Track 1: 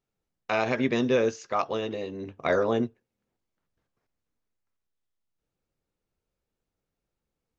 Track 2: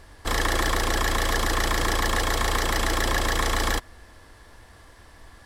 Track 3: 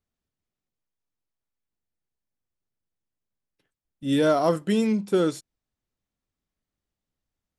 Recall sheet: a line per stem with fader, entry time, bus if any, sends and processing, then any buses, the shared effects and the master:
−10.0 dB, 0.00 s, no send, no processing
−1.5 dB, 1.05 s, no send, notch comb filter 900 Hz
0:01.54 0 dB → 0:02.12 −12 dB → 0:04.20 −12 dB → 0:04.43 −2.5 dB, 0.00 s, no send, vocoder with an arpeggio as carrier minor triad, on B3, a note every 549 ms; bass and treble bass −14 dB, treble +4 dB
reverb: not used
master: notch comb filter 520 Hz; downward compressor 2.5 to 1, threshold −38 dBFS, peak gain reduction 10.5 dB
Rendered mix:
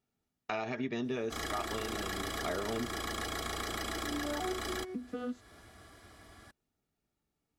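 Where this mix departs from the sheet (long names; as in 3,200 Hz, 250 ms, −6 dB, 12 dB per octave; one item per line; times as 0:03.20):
stem 1 −10.0 dB → +1.5 dB
stem 3: missing bass and treble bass −14 dB, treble +4 dB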